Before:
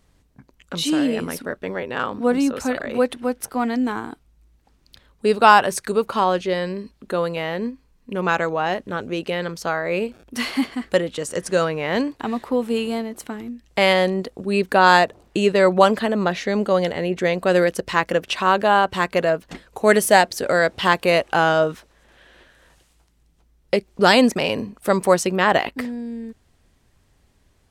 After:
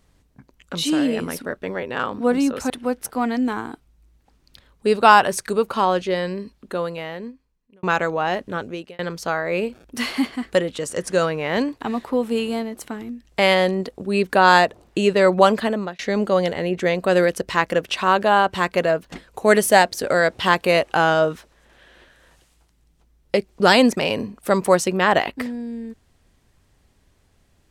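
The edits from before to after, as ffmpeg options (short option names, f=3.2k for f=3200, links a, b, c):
-filter_complex "[0:a]asplit=5[a][b][c][d][e];[a]atrim=end=2.702[f];[b]atrim=start=3.088:end=8.22,asetpts=PTS-STARTPTS,afade=t=out:st=3.712:d=1.42[g];[c]atrim=start=8.22:end=9.38,asetpts=PTS-STARTPTS,afade=t=in:d=0.004:c=hsin,afade=t=out:st=0.74:d=0.42[h];[d]atrim=start=9.38:end=16.38,asetpts=PTS-STARTPTS,afade=t=in:d=0.004:c=hsin,afade=t=out:st=6.69:d=0.31[i];[e]atrim=start=16.38,asetpts=PTS-STARTPTS,afade=t=in:d=0.004:c=hsin[j];[g][h][i][j]concat=n=4:v=0:a=1[k];[f][k]acrossfade=d=0.004:c1=hsin:c2=hsin"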